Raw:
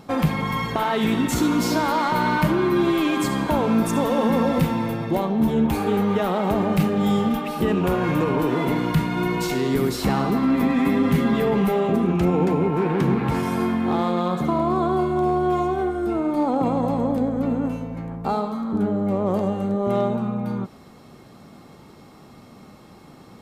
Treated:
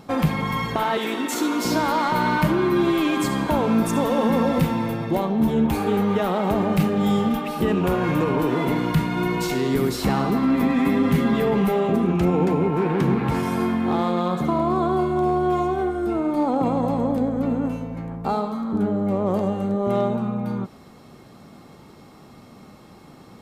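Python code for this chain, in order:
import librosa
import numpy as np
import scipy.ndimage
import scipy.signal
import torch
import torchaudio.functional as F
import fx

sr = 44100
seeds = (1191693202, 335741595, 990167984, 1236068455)

y = fx.highpass(x, sr, hz=290.0, slope=24, at=(0.97, 1.65))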